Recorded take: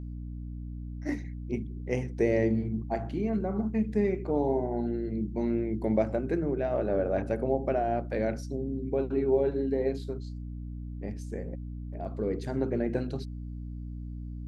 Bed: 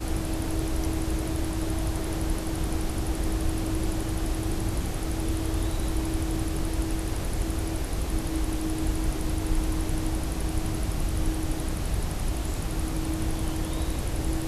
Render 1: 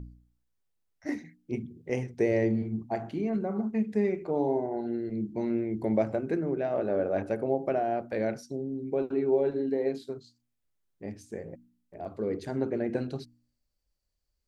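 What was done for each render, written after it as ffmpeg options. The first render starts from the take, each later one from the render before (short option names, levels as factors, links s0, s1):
-af "bandreject=f=60:t=h:w=4,bandreject=f=120:t=h:w=4,bandreject=f=180:t=h:w=4,bandreject=f=240:t=h:w=4,bandreject=f=300:t=h:w=4"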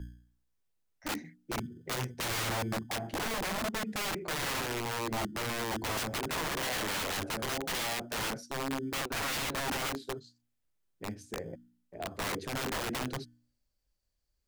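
-filter_complex "[0:a]acrossover=split=110[s0][s1];[s0]acrusher=samples=27:mix=1:aa=0.000001[s2];[s1]aeval=exprs='(mod(28.2*val(0)+1,2)-1)/28.2':c=same[s3];[s2][s3]amix=inputs=2:normalize=0"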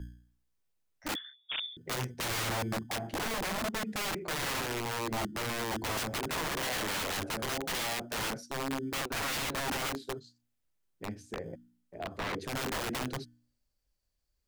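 -filter_complex "[0:a]asettb=1/sr,asplit=3[s0][s1][s2];[s0]atrim=end=1.154[s3];[s1]atrim=start=1.15:end=1.77,asetpts=PTS-STARTPTS,afade=t=in:d=0.004:c=qsin,afade=t=out:st=0.616:d=0.004:c=qsin,lowpass=f=3100:t=q:w=0.5098,lowpass=f=3100:t=q:w=0.6013,lowpass=f=3100:t=q:w=0.9,lowpass=f=3100:t=q:w=2.563,afreqshift=-3700[s4];[s2]atrim=start=1.766[s5];[s3][s4]acrossfade=d=0.004:c1=hsin:c2=qsin[s6];[s6][s5]acrossfade=d=0.004:c1=qsin:c2=hsin,asettb=1/sr,asplit=3[s7][s8][s9];[s7]atrim=end=11.064[s10];[s8]atrim=start=11.06:end=12.4,asetpts=PTS-STARTPTS,afade=t=in:d=0.004:c=qsin,afade=t=out:st=1.336:d=0.004:c=qsin,acrossover=split=4500[s11][s12];[s12]acompressor=threshold=0.00224:ratio=4:attack=1:release=60[s13];[s11][s13]amix=inputs=2:normalize=0[s14];[s9]atrim=start=12.396[s15];[s10][s14]acrossfade=d=0.004:c1=hsin:c2=qsin[s16];[s16][s15]acrossfade=d=0.004:c1=qsin:c2=hsin"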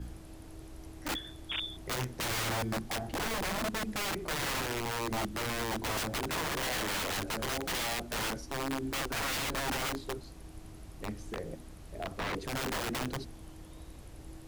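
-filter_complex "[1:a]volume=0.1[s0];[0:a][s0]amix=inputs=2:normalize=0"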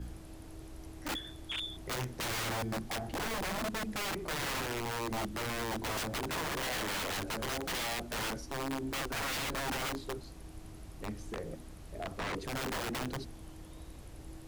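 -af "asoftclip=type=tanh:threshold=0.0316"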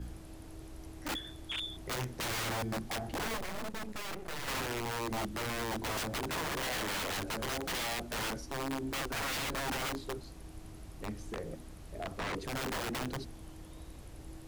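-filter_complex "[0:a]asettb=1/sr,asplit=3[s0][s1][s2];[s0]atrim=end=3.374[s3];[s1]atrim=start=3.37:end=4.48,asetpts=PTS-STARTPTS,afade=t=in:d=0.004:c=qsin,afade=t=out:st=1.106:d=0.004:c=qsin,aeval=exprs='max(val(0),0)':c=same[s4];[s2]atrim=start=4.476[s5];[s3][s4]acrossfade=d=0.004:c1=hsin:c2=qsin[s6];[s6][s5]acrossfade=d=0.004:c1=qsin:c2=hsin"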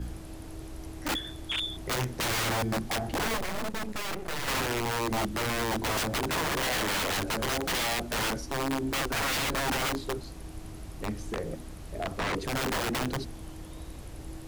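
-af "volume=2.11"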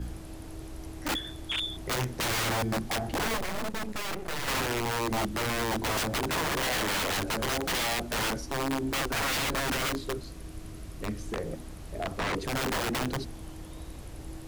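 -filter_complex "[0:a]asettb=1/sr,asplit=3[s0][s1][s2];[s0]atrim=end=9.604[s3];[s1]atrim=start=9.6:end=11.29,asetpts=PTS-STARTPTS,afade=t=in:d=0.004:c=qsin,afade=t=out:st=1.686:d=0.004:c=qsin,equalizer=f=830:w=5.2:g=-8[s4];[s2]atrim=start=11.286[s5];[s3][s4]acrossfade=d=0.004:c1=hsin:c2=qsin[s6];[s6][s5]acrossfade=d=0.004:c1=qsin:c2=hsin"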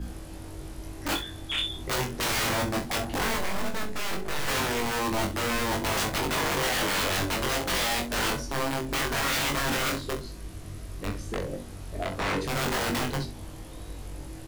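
-filter_complex "[0:a]asplit=2[s0][s1];[s1]adelay=21,volume=0.708[s2];[s0][s2]amix=inputs=2:normalize=0,aecho=1:1:42|65:0.316|0.188"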